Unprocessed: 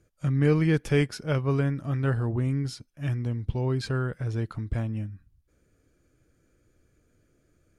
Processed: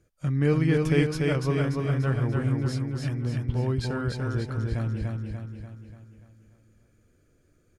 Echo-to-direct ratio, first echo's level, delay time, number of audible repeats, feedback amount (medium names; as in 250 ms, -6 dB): -1.5 dB, -3.0 dB, 292 ms, 6, 52%